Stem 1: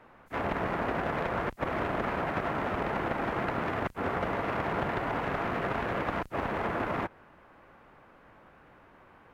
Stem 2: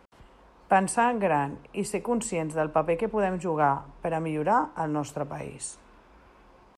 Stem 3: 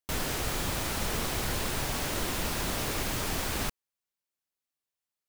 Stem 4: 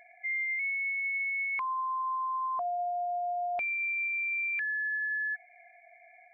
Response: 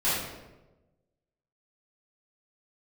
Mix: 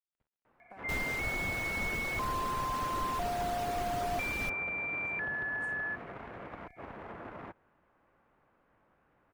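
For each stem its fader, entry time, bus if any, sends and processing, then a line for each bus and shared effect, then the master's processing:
-13.5 dB, 0.45 s, no send, dry
-16.0 dB, 0.00 s, no send, compressor 5:1, threshold -31 dBFS, peak gain reduction 13.5 dB; resonator 110 Hz, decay 0.23 s, harmonics all, mix 50%; crossover distortion -52.5 dBFS
-4.5 dB, 0.80 s, no send, reverb removal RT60 0.74 s
-2.5 dB, 0.60 s, no send, dry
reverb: off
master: high shelf 4000 Hz -8 dB

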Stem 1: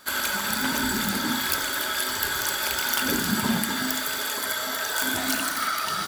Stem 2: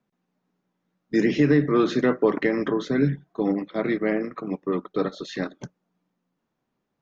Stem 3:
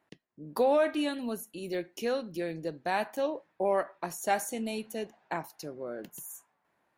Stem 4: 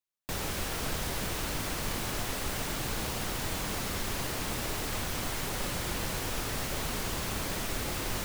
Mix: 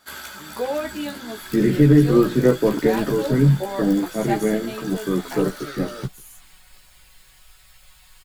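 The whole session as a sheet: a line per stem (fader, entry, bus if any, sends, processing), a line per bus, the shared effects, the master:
-2.5 dB, 0.00 s, no send, auto duck -6 dB, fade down 0.40 s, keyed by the third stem
+2.0 dB, 0.40 s, no send, tilt -3 dB/oct
+3.0 dB, 0.00 s, no send, dry
-13.0 dB, 1.10 s, no send, passive tone stack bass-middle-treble 10-0-10; notch 5900 Hz, Q 5.6; comb 5.4 ms, depth 98%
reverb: off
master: high shelf 10000 Hz -3 dB; chorus voices 6, 0.64 Hz, delay 15 ms, depth 1.6 ms

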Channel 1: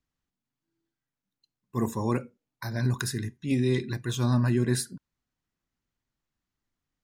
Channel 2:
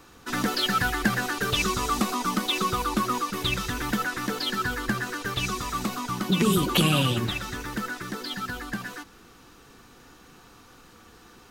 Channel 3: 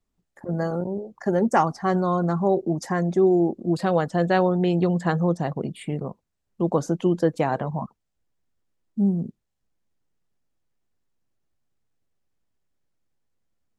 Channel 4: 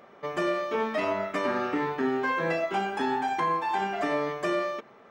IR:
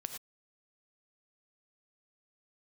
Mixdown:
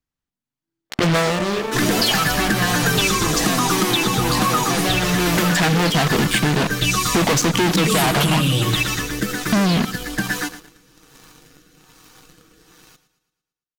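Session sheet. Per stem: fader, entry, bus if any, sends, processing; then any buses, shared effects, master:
+2.0 dB, 0.00 s, no send, no echo send, compressor, threshold -30 dBFS, peak gain reduction 10 dB
+1.0 dB, 1.45 s, send -7.5 dB, echo send -11 dB, high shelf 3800 Hz +7 dB; rotary speaker horn 1.2 Hz; comb 6.4 ms, depth 64%
-5.0 dB, 0.55 s, send -12 dB, no echo send, fuzz box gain 40 dB, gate -41 dBFS; bell 3700 Hz +9 dB 2.8 oct; notch 540 Hz, Q 12; auto duck -17 dB, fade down 0.25 s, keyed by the first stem
-7.0 dB, 0.90 s, no send, no echo send, dry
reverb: on, pre-delay 3 ms
echo: feedback echo 0.113 s, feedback 51%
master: sample leveller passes 2; compressor, threshold -15 dBFS, peak gain reduction 8 dB

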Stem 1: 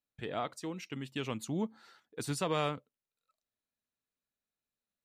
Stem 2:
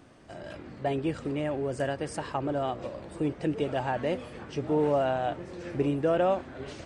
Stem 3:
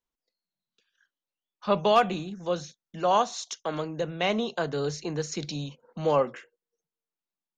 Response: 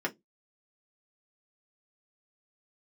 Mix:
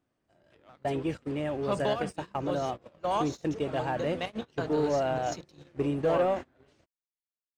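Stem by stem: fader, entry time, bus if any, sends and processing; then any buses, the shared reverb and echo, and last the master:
-6.5 dB, 0.30 s, no send, tone controls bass -11 dB, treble -6 dB; shaped vibrato saw down 5.1 Hz, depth 100 cents; auto duck -15 dB, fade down 0.60 s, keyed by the third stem
-5.0 dB, 0.00 s, no send, dry
-9.5 dB, 0.00 s, no send, step gate "xxxxx.x.xx" 194 bpm -12 dB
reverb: off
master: gate -37 dBFS, range -17 dB; sample leveller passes 1

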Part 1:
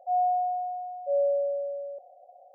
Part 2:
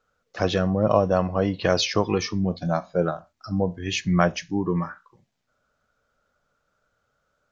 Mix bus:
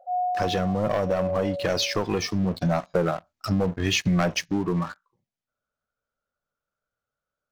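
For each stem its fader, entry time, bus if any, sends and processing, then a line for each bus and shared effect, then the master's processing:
-1.0 dB, 0.00 s, no send, dry
2.26 s -10.5 dB -> 2.85 s -2 dB -> 4.4 s -2 dB -> 4.65 s -10 dB, 0.00 s, no send, sample leveller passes 3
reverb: off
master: compressor 6:1, threshold -20 dBFS, peak gain reduction 9.5 dB

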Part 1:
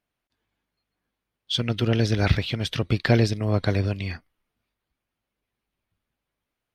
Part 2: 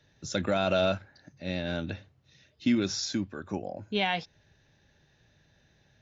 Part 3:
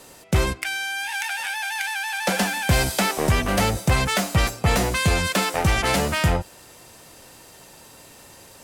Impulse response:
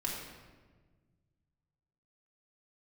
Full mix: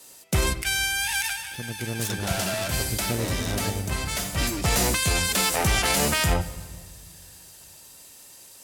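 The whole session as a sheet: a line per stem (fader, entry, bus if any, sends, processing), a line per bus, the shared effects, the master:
-9.5 dB, 0.00 s, no send, median filter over 41 samples
-4.0 dB, 1.75 s, no send, moving spectral ripple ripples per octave 1, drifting -0.58 Hz, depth 20 dB; soft clip -25.5 dBFS, distortion -6 dB; noise-modulated delay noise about 1900 Hz, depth 0.042 ms
-0.5 dB, 0.00 s, send -17.5 dB, three-band expander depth 40%; auto duck -17 dB, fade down 0.25 s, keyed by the first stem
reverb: on, RT60 1.4 s, pre-delay 3 ms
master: high shelf 3600 Hz +11.5 dB; limiter -12 dBFS, peak gain reduction 8.5 dB

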